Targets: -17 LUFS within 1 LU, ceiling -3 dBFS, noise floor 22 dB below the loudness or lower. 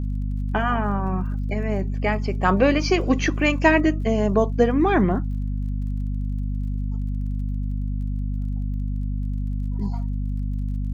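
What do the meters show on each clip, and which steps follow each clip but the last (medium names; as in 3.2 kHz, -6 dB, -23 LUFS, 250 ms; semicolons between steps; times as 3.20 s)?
tick rate 35 per s; hum 50 Hz; highest harmonic 250 Hz; hum level -23 dBFS; loudness -24.0 LUFS; peak level -4.0 dBFS; loudness target -17.0 LUFS
-> de-click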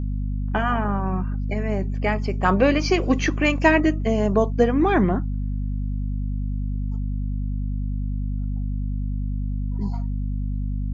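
tick rate 0 per s; hum 50 Hz; highest harmonic 250 Hz; hum level -23 dBFS
-> hum notches 50/100/150/200/250 Hz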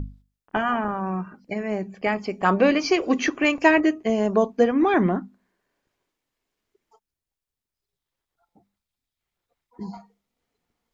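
hum not found; loudness -22.5 LUFS; peak level -4.0 dBFS; loudness target -17.0 LUFS
-> trim +5.5 dB; peak limiter -3 dBFS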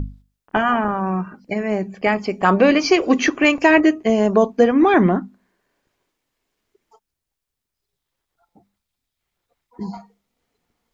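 loudness -17.5 LUFS; peak level -3.0 dBFS; noise floor -82 dBFS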